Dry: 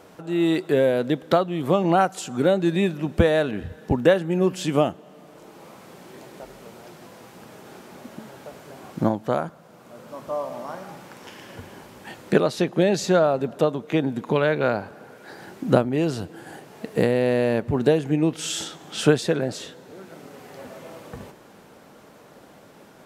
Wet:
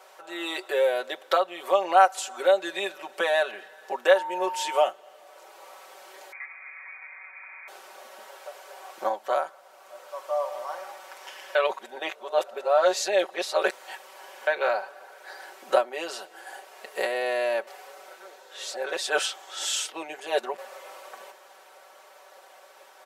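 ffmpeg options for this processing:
-filter_complex "[0:a]asettb=1/sr,asplit=3[a][b][c];[a]atrim=end=4.154[d];[b]atrim=start=4.15:end=4.84,asetpts=PTS-STARTPTS,afade=t=in:d=0.004:c=qsin,afade=t=out:st=0.686:d=0.004:c=qsin,aeval=exprs='val(0)+0.0251*sin(2*PI*910*n/s)':c=same[e];[c]atrim=start=4.836[f];[d][e]acrossfade=d=0.004:c1=hsin:c2=qsin[g];[g][f]acrossfade=d=0.004:c1=qsin:c2=hsin,asettb=1/sr,asplit=3[h][i][j];[h]atrim=end=6.324[k];[i]atrim=start=6.32:end=7.68,asetpts=PTS-STARTPTS,afade=t=in:d=0.004:c=qsin,afade=t=out:st=1.356:d=0.004:c=qsin,lowpass=f=2.2k:t=q:w=0.5098,lowpass=f=2.2k:t=q:w=0.6013,lowpass=f=2.2k:t=q:w=0.9,lowpass=f=2.2k:t=q:w=2.563,afreqshift=-2600[l];[j]atrim=start=7.676[m];[k][l]acrossfade=d=0.004:c1=hsin:c2=qsin[n];[n][m]acrossfade=d=0.004:c1=qsin:c2=hsin,asettb=1/sr,asplit=3[o][p][q];[o]atrim=end=8.244[r];[p]atrim=start=8.24:end=8.98,asetpts=PTS-STARTPTS,afade=t=in:d=0.004:c=qsin,afade=t=out:st=0.736:d=0.004:c=qsin,highpass=240[s];[q]atrim=start=8.976[t];[r][s]acrossfade=d=0.004:c1=hsin:c2=qsin[u];[u][t]acrossfade=d=0.004:c1=qsin:c2=hsin,asettb=1/sr,asplit=3[v][w][x];[v]atrim=end=9.984[y];[w]atrim=start=9.98:end=10.55,asetpts=PTS-STARTPTS,afade=t=in:d=0.004:c=qsin,afade=t=out:st=0.566:d=0.004:c=qsin,highpass=270[z];[x]atrim=start=10.546[aa];[y][z]acrossfade=d=0.004:c1=hsin:c2=qsin[ab];[ab][aa]acrossfade=d=0.004:c1=qsin:c2=hsin,asplit=5[ac][ad][ae][af][ag];[ac]atrim=end=11.552[ah];[ad]atrim=start=11.548:end=14.472,asetpts=PTS-STARTPTS,areverse[ai];[ae]atrim=start=14.468:end=17.672[aj];[af]atrim=start=17.668:end=20.582,asetpts=PTS-STARTPTS,areverse[ak];[ag]atrim=start=20.578[al];[ah][ai]acrossfade=d=0.004:c1=hsin:c2=hsin[am];[am][aj]acrossfade=d=0.004:c1=hsin:c2=hsin[an];[an][ak]acrossfade=d=0.004:c1=hsin:c2=hsin[ao];[ao][al]acrossfade=d=0.004:c1=hsin:c2=hsin,highpass=f=560:w=0.5412,highpass=f=560:w=1.3066,aecho=1:1:5.3:0.85,volume=-1.5dB"

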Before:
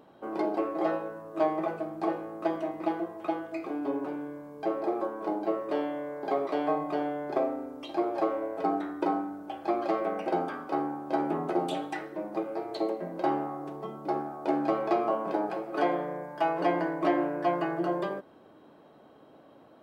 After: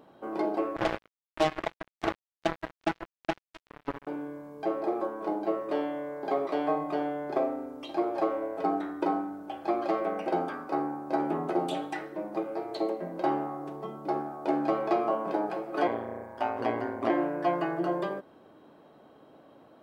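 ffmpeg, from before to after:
-filter_complex "[0:a]asettb=1/sr,asplit=3[a][b][c];[a]atrim=end=0.764[d];[b]atrim=start=0.76:end=4.07,asetpts=PTS-STARTPTS,afade=t=in:d=0.004:c=qsin,afade=t=out:st=3.306:d=0.004:c=qsin,acrusher=bits=3:mix=0:aa=0.5[e];[c]atrim=start=4.066[f];[d][e]acrossfade=d=0.004:c1=hsin:c2=qsin[g];[g][f]acrossfade=d=0.004:c1=qsin:c2=hsin,asettb=1/sr,asplit=3[h][i][j];[h]atrim=end=10.534[k];[i]atrim=start=10.53:end=11.2,asetpts=PTS-STARTPTS,afade=t=in:d=0.004:c=qsin,afade=t=out:st=0.666:d=0.004:c=qsin,equalizer=f=3.2k:w=5.9:g=-8.5[l];[j]atrim=start=11.196[m];[k][l]acrossfade=d=0.004:c1=hsin:c2=qsin[n];[n][m]acrossfade=d=0.004:c1=qsin:c2=hsin,asettb=1/sr,asplit=3[o][p][q];[o]atrim=end=15.874[r];[p]atrim=start=15.87:end=17.1,asetpts=PTS-STARTPTS,afade=t=in:d=0.004:c=qsin,afade=t=out:st=1.226:d=0.004:c=qsin,aeval=exprs='val(0)*sin(2*PI*58*n/s)':c=same[s];[q]atrim=start=17.096[t];[r][s]acrossfade=d=0.004:c1=hsin:c2=qsin[u];[u][t]acrossfade=d=0.004:c1=qsin:c2=hsin"

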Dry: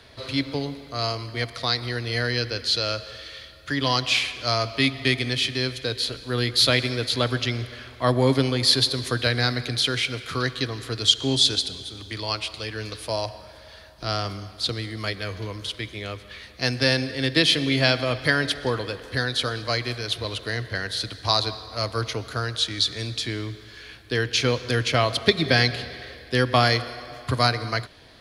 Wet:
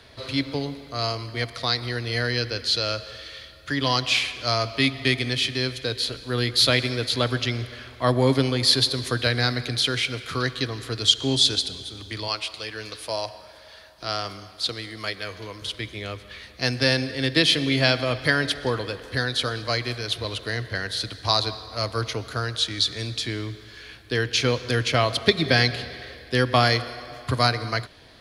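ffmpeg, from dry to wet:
-filter_complex "[0:a]asettb=1/sr,asplit=3[a][b][c];[a]atrim=end=12.284[d];[b]atrim=start=12.28:end=15.62,asetpts=PTS-STARTPTS,afade=t=in:d=0.004:c=qsin,afade=t=out:st=3.336:d=0.004:c=qsin,lowshelf=f=250:g=-10.5[e];[c]atrim=start=15.616[f];[d][e]acrossfade=d=0.004:c1=hsin:c2=qsin[g];[g][f]acrossfade=d=0.004:c1=qsin:c2=hsin"

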